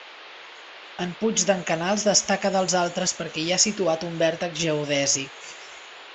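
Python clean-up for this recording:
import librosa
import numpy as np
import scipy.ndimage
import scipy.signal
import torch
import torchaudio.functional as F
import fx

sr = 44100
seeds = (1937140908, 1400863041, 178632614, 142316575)

y = fx.noise_reduce(x, sr, print_start_s=0.08, print_end_s=0.58, reduce_db=26.0)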